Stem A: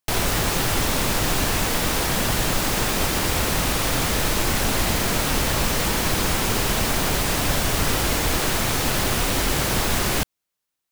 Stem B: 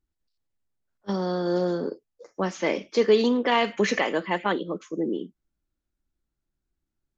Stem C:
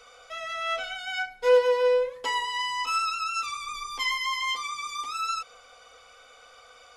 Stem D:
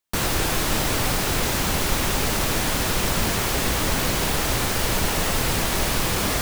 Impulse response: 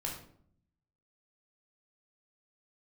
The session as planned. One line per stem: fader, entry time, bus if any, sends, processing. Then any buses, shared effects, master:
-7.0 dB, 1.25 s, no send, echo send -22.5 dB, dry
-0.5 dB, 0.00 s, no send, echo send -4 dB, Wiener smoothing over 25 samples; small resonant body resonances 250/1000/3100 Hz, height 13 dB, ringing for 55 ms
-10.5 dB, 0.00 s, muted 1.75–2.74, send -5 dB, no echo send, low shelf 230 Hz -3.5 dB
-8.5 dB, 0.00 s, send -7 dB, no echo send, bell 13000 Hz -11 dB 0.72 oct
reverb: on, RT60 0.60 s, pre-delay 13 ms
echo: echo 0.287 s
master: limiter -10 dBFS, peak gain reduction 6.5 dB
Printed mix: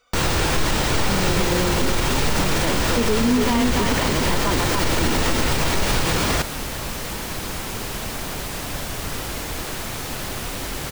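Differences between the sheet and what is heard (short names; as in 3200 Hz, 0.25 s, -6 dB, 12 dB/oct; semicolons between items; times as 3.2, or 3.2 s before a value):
stem C: send off; stem D -8.5 dB -> +2.0 dB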